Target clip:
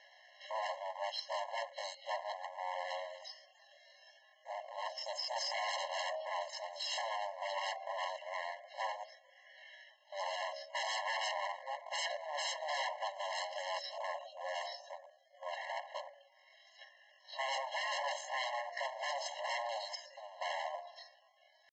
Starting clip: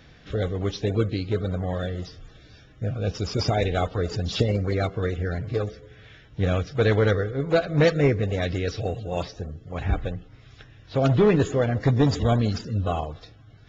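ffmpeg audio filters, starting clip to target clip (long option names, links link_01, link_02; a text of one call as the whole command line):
ffmpeg -i in.wav -filter_complex "[0:a]adynamicequalizer=threshold=0.00562:dfrequency=200:dqfactor=5.8:tfrequency=200:tqfactor=5.8:attack=5:release=100:ratio=0.375:range=3.5:mode=cutabove:tftype=bell,bandreject=frequency=70.2:width_type=h:width=4,bandreject=frequency=140.4:width_type=h:width=4,bandreject=frequency=210.6:width_type=h:width=4,bandreject=frequency=280.8:width_type=h:width=4,bandreject=frequency=351:width_type=h:width=4,bandreject=frequency=421.2:width_type=h:width=4,bandreject=frequency=491.4:width_type=h:width=4,bandreject=frequency=561.6:width_type=h:width=4,bandreject=frequency=631.8:width_type=h:width=4,bandreject=frequency=702:width_type=h:width=4,bandreject=frequency=772.2:width_type=h:width=4,bandreject=frequency=842.4:width_type=h:width=4,bandreject=frequency=912.6:width_type=h:width=4,bandreject=frequency=982.8:width_type=h:width=4,bandreject=frequency=1053:width_type=h:width=4,bandreject=frequency=1123.2:width_type=h:width=4,bandreject=frequency=1193.4:width_type=h:width=4,bandreject=frequency=1263.6:width_type=h:width=4,bandreject=frequency=1333.8:width_type=h:width=4,bandreject=frequency=1404:width_type=h:width=4,bandreject=frequency=1474.2:width_type=h:width=4,bandreject=frequency=1544.4:width_type=h:width=4,asubboost=boost=4:cutoff=60,acrossover=split=330[link_01][link_02];[link_01]alimiter=limit=-21.5dB:level=0:latency=1:release=123[link_03];[link_03][link_02]amix=inputs=2:normalize=0,atempo=0.63,aresample=16000,aeval=exprs='0.0422*(abs(mod(val(0)/0.0422+3,4)-2)-1)':channel_layout=same,aresample=44100,afftfilt=real='re*eq(mod(floor(b*sr/1024/550),2),1)':imag='im*eq(mod(floor(b*sr/1024/550),2),1)':win_size=1024:overlap=0.75,volume=-1.5dB" out.wav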